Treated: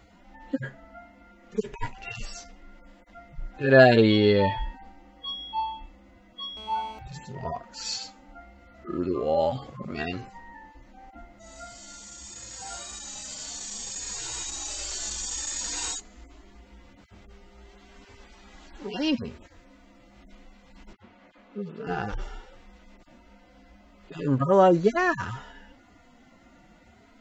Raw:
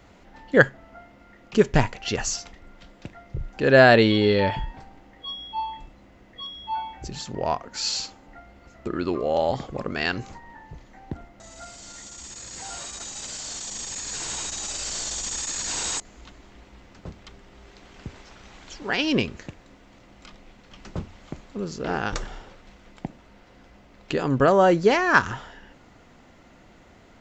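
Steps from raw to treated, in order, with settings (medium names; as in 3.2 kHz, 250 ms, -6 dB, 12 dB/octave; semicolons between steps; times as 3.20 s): harmonic-percussive separation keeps harmonic; 6.57–6.99 s: mobile phone buzz -47 dBFS; 20.93–21.87 s: three-band isolator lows -21 dB, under 160 Hz, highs -18 dB, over 3.6 kHz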